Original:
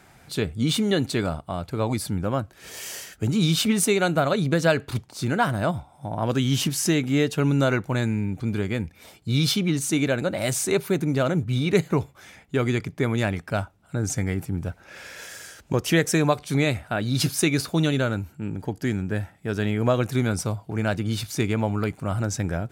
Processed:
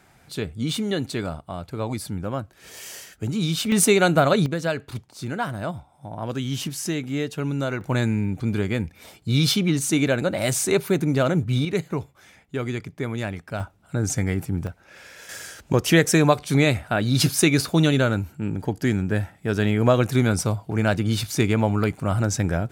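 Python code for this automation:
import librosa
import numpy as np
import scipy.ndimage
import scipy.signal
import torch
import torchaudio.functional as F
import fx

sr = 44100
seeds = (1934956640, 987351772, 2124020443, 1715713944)

y = fx.gain(x, sr, db=fx.steps((0.0, -3.0), (3.72, 4.0), (4.46, -5.0), (7.81, 2.0), (11.65, -4.5), (13.6, 2.0), (14.67, -4.0), (15.29, 3.5)))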